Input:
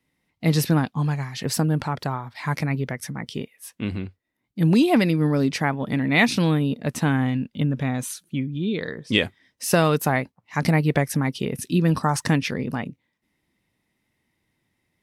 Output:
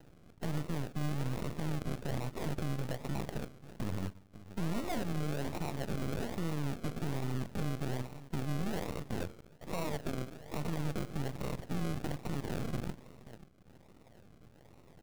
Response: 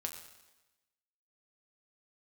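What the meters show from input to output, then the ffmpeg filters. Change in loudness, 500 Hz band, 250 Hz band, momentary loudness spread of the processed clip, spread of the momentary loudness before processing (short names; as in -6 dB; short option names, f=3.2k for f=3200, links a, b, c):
-15.5 dB, -14.0 dB, -16.0 dB, 7 LU, 12 LU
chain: -filter_complex "[0:a]aresample=8000,acrusher=bits=2:mode=log:mix=0:aa=0.000001,aresample=44100,acompressor=threshold=-28dB:ratio=4,aecho=1:1:535:0.0841,acompressor=mode=upward:threshold=-43dB:ratio=2.5,aecho=1:1:1.6:0.59,asplit=2[a][b];[1:a]atrim=start_sample=2205,lowpass=5.1k,adelay=47[c];[b][c]afir=irnorm=-1:irlink=0,volume=-13.5dB[d];[a][d]amix=inputs=2:normalize=0,acrusher=samples=38:mix=1:aa=0.000001:lfo=1:lforange=22.8:lforate=1.2,equalizer=f=190:w=0.45:g=3.5,aeval=exprs='max(val(0),0)':c=same,alimiter=level_in=1.5dB:limit=-24dB:level=0:latency=1:release=61,volume=-1.5dB"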